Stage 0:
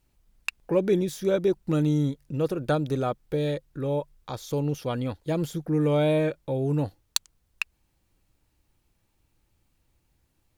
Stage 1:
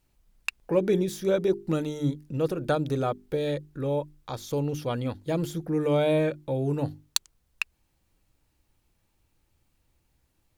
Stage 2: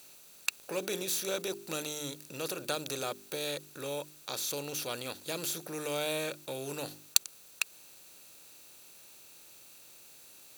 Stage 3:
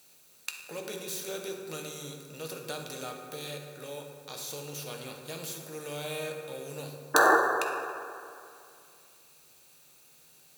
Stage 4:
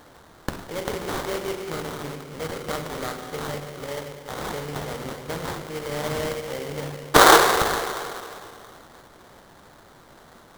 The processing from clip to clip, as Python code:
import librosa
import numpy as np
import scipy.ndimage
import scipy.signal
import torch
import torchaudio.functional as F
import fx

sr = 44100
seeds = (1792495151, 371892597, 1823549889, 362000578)

y1 = fx.hum_notches(x, sr, base_hz=50, count=8)
y2 = fx.bin_compress(y1, sr, power=0.6)
y2 = fx.tilt_eq(y2, sr, slope=4.0)
y2 = F.gain(torch.from_numpy(y2), -10.0).numpy()
y3 = fx.spec_paint(y2, sr, seeds[0], shape='noise', start_s=7.14, length_s=0.23, low_hz=280.0, high_hz=1800.0, level_db=-16.0)
y3 = fx.rev_fdn(y3, sr, rt60_s=2.5, lf_ratio=1.0, hf_ratio=0.45, size_ms=38.0, drr_db=1.0)
y3 = F.gain(torch.from_numpy(y3), -5.5).numpy()
y4 = fx.sample_hold(y3, sr, seeds[1], rate_hz=2600.0, jitter_pct=20)
y4 = F.gain(torch.from_numpy(y4), 8.5).numpy()